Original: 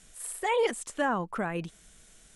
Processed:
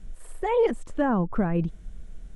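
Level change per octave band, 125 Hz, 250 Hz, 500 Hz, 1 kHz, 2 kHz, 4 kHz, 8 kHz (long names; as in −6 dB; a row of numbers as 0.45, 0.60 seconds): +11.5 dB, +9.5 dB, +5.0 dB, +0.5 dB, −4.0 dB, can't be measured, below −10 dB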